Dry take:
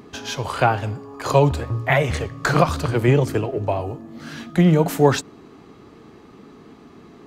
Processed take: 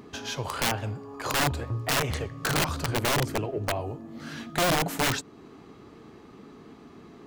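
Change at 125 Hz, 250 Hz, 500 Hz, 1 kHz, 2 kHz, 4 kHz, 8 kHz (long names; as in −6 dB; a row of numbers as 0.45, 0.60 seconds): −11.0, −11.0, −11.0, −7.0, −4.0, +2.0, +2.5 decibels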